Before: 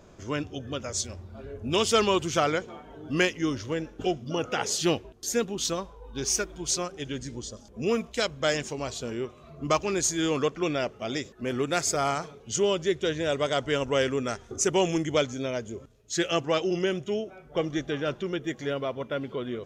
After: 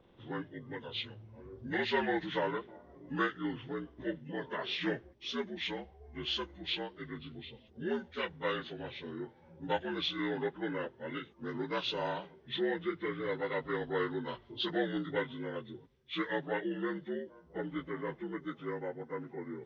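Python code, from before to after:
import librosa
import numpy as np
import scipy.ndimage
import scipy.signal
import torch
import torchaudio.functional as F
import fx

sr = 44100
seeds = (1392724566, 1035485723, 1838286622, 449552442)

y = fx.partial_stretch(x, sr, pct=80)
y = fx.dynamic_eq(y, sr, hz=1700.0, q=1.1, threshold_db=-40.0, ratio=4.0, max_db=3)
y = y * librosa.db_to_amplitude(-8.0)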